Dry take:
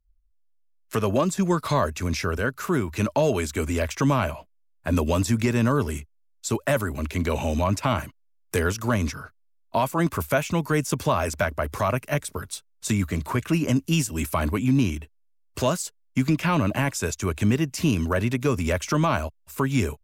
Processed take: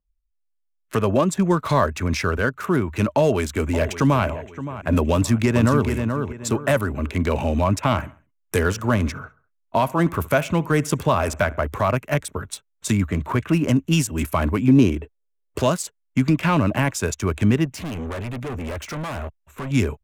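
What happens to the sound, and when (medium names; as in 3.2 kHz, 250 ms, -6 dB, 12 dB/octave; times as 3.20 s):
1.77–2.46 s: peaking EQ 1.6 kHz +2.5 dB 1.4 oct
3.16–4.24 s: echo throw 570 ms, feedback 40%, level -13 dB
5.12–5.89 s: echo throw 430 ms, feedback 30%, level -6 dB
7.80–11.63 s: feedback delay 67 ms, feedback 47%, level -20.5 dB
14.68–15.59 s: peaking EQ 440 Hz +11 dB 1 oct
17.65–19.71 s: overload inside the chain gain 30.5 dB
whole clip: local Wiener filter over 9 samples; spectral noise reduction 12 dB; trim +3.5 dB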